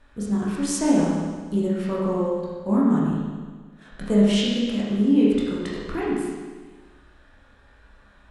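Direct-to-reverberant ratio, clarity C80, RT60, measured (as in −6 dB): −7.0 dB, 1.0 dB, 1.5 s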